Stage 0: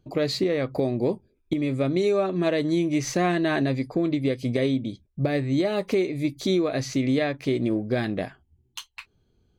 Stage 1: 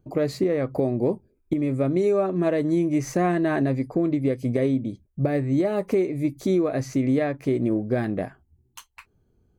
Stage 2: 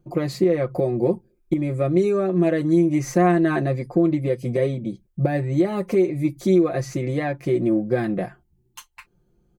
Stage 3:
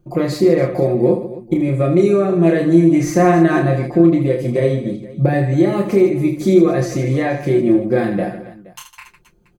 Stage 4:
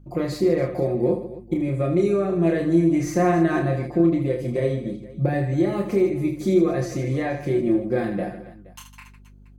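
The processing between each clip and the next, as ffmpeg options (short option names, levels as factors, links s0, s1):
-af "equalizer=f=3700:w=0.99:g=-14,volume=1.19"
-af "aecho=1:1:5.7:0.84"
-af "aecho=1:1:30|78|154.8|277.7|474.3:0.631|0.398|0.251|0.158|0.1,volume=1.58"
-af "aeval=exprs='val(0)+0.01*(sin(2*PI*50*n/s)+sin(2*PI*2*50*n/s)/2+sin(2*PI*3*50*n/s)/3+sin(2*PI*4*50*n/s)/4+sin(2*PI*5*50*n/s)/5)':c=same,volume=0.447"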